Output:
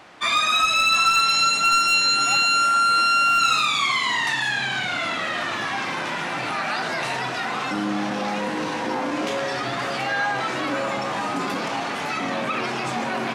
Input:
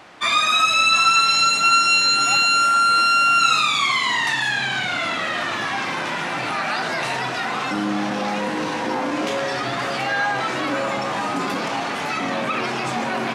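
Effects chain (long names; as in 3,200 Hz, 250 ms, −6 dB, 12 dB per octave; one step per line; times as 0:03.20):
hard clipping −10.5 dBFS, distortion −25 dB
level −2 dB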